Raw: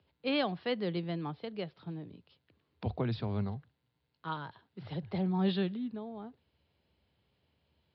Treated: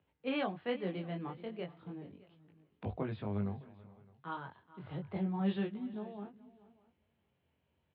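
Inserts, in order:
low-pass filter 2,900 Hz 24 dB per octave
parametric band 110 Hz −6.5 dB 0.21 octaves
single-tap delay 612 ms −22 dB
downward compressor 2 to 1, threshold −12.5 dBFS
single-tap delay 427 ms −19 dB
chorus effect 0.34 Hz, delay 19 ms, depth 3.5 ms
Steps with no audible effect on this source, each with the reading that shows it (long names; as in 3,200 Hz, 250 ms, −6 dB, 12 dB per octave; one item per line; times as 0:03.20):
downward compressor, threshold −12.5 dBFS: peak of its input −20.0 dBFS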